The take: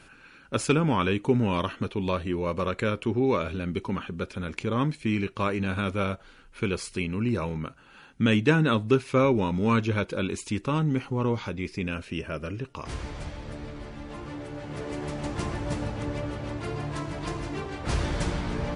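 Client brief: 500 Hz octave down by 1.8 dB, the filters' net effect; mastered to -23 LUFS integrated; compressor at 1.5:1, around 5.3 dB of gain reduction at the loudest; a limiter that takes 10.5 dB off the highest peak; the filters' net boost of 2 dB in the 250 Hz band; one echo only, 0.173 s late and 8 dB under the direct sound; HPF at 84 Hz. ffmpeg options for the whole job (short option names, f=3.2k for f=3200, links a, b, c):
-af "highpass=84,equalizer=f=250:t=o:g=3.5,equalizer=f=500:t=o:g=-3.5,acompressor=threshold=-31dB:ratio=1.5,alimiter=limit=-24dB:level=0:latency=1,aecho=1:1:173:0.398,volume=11.5dB"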